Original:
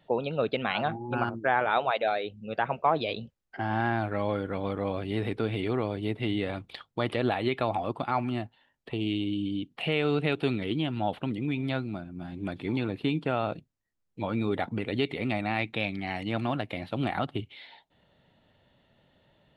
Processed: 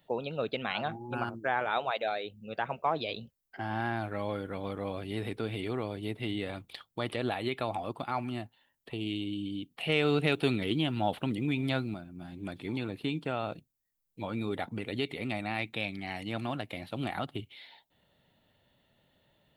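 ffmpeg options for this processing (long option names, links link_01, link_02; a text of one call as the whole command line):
ffmpeg -i in.wav -filter_complex "[0:a]asettb=1/sr,asplit=3[link_01][link_02][link_03];[link_01]atrim=end=9.894[link_04];[link_02]atrim=start=9.89:end=11.94,asetpts=PTS-STARTPTS,afade=type=in:duration=0.004:curve=qsin,afade=type=out:start_time=2.046:duration=0.004:curve=qsin,acontrast=20[link_05];[link_03]atrim=start=11.936[link_06];[link_04][link_05]acrossfade=duration=0.004:curve1=hsin:curve2=qsin[link_07];[link_07][link_06]acrossfade=duration=0.004:curve1=qsin:curve2=hsin,aemphasis=mode=production:type=50fm,volume=-5dB" out.wav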